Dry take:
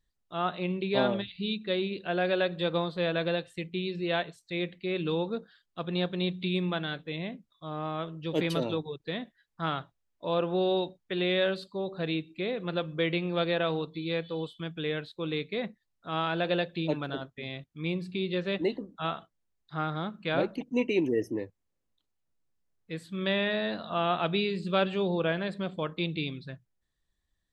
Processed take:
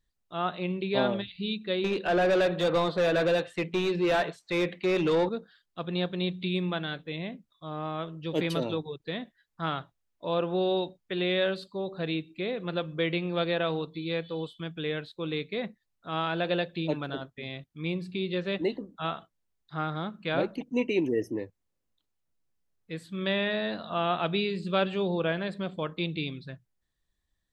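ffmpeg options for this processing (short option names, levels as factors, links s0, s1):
-filter_complex "[0:a]asettb=1/sr,asplit=3[s0][s1][s2];[s0]atrim=end=1.844[s3];[s1]atrim=start=1.84:end=5.29,asetpts=PTS-STARTPTS,afade=t=in:d=0.004:c=qsin,afade=t=out:st=3.446:d=0.004:c=qsin,asplit=2[s4][s5];[s5]highpass=f=720:p=1,volume=14.1,asoftclip=type=tanh:threshold=0.178[s6];[s4][s6]amix=inputs=2:normalize=0,lowpass=f=1200:p=1,volume=0.501[s7];[s2]atrim=start=5.286[s8];[s3][s7]acrossfade=d=0.004:c1=hsin:c2=qsin[s9];[s9][s8]acrossfade=d=0.004:c1=qsin:c2=hsin"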